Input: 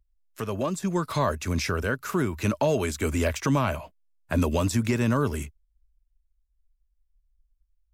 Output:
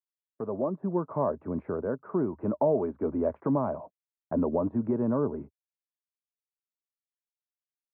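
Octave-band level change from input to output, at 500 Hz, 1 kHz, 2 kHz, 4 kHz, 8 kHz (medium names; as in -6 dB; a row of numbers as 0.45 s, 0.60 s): -0.5 dB, -5.0 dB, under -20 dB, under -40 dB, under -40 dB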